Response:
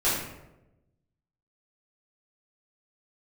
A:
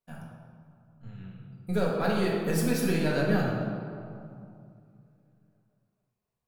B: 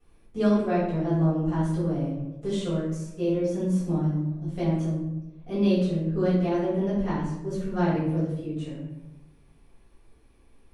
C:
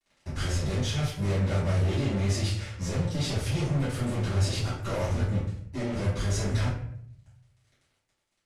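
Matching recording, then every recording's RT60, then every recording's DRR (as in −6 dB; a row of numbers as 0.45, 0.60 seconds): B; 2.5, 1.0, 0.65 seconds; −4.5, −11.0, −12.5 decibels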